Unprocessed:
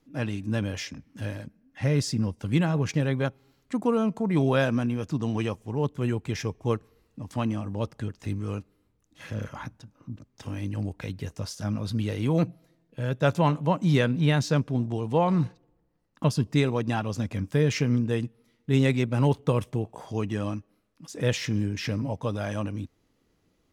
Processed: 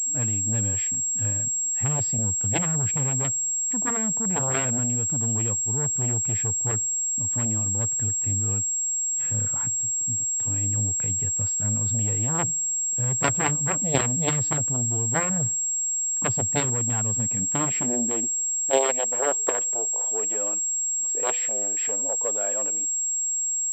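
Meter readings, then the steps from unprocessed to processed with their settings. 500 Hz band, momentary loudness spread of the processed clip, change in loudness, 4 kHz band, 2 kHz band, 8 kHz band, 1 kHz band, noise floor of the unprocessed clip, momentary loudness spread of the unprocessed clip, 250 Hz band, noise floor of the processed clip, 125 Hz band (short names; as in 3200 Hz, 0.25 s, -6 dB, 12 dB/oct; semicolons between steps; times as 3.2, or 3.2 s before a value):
-3.0 dB, 1 LU, +5.0 dB, -3.0 dB, 0.0 dB, +27.0 dB, +0.5 dB, -70 dBFS, 13 LU, -6.0 dB, -26 dBFS, -2.5 dB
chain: added harmonics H 3 -7 dB, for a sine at -9.5 dBFS; high-pass sweep 100 Hz -> 480 Hz, 16.92–18.79; pulse-width modulation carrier 7600 Hz; gain +6.5 dB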